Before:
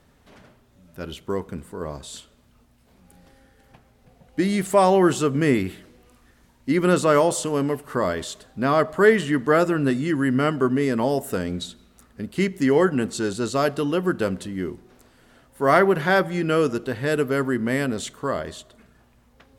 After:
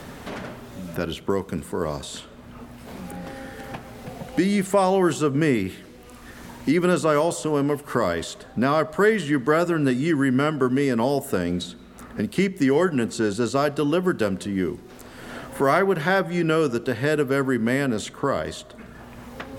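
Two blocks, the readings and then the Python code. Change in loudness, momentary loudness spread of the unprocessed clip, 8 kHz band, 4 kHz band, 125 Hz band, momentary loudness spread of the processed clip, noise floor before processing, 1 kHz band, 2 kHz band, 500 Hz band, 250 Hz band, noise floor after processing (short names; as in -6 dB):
-1.0 dB, 16 LU, -1.5 dB, +0.5 dB, +0.5 dB, 18 LU, -58 dBFS, -1.5 dB, -0.5 dB, -1.0 dB, +0.5 dB, -44 dBFS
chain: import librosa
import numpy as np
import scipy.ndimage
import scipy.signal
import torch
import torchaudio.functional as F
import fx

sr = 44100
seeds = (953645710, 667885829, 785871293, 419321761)

y = fx.band_squash(x, sr, depth_pct=70)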